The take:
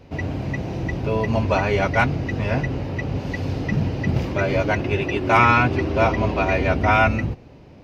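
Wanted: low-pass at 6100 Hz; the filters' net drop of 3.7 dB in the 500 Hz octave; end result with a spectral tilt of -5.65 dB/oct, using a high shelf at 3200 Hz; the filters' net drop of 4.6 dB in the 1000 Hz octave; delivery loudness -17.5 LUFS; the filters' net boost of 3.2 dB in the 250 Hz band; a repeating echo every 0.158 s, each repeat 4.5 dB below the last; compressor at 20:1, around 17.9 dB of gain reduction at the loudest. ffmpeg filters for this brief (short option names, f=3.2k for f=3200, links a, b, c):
-af "lowpass=6.1k,equalizer=f=250:t=o:g=5.5,equalizer=f=500:t=o:g=-5,equalizer=f=1k:t=o:g=-4,highshelf=f=3.2k:g=-8.5,acompressor=threshold=-32dB:ratio=20,aecho=1:1:158|316|474|632|790|948|1106|1264|1422:0.596|0.357|0.214|0.129|0.0772|0.0463|0.0278|0.0167|0.01,volume=17.5dB"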